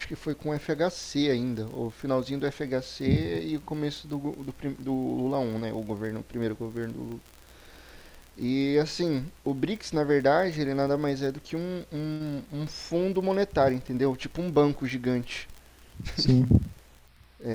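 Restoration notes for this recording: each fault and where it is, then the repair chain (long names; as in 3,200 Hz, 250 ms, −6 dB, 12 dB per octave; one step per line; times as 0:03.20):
surface crackle 31 per second −35 dBFS
0:07.12: click −29 dBFS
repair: click removal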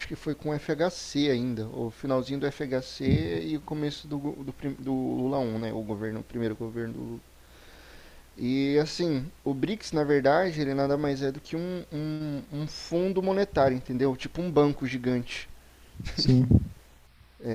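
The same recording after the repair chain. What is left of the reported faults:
none of them is left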